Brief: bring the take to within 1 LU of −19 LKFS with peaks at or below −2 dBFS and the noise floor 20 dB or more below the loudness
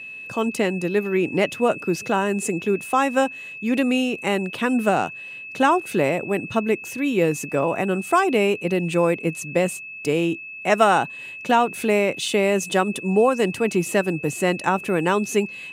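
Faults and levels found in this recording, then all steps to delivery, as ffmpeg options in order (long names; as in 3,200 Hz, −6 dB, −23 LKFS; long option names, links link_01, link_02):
interfering tone 2,600 Hz; level of the tone −34 dBFS; integrated loudness −22.0 LKFS; sample peak −2.5 dBFS; target loudness −19.0 LKFS
→ -af "bandreject=frequency=2600:width=30"
-af "volume=3dB,alimiter=limit=-2dB:level=0:latency=1"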